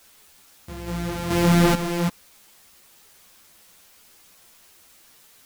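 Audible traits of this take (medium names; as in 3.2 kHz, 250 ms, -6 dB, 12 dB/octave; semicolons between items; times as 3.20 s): a buzz of ramps at a fixed pitch in blocks of 256 samples; random-step tremolo 2.3 Hz, depth 90%; a quantiser's noise floor 10-bit, dither triangular; a shimmering, thickened sound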